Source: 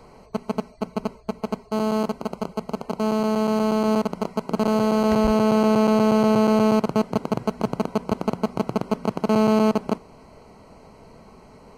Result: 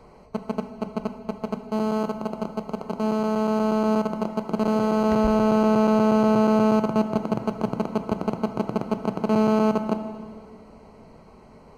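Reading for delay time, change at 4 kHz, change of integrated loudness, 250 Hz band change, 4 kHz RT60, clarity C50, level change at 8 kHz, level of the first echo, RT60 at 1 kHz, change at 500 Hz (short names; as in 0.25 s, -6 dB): none, -5.0 dB, -1.0 dB, -1.0 dB, 1.9 s, 10.0 dB, n/a, none, 2.1 s, -1.5 dB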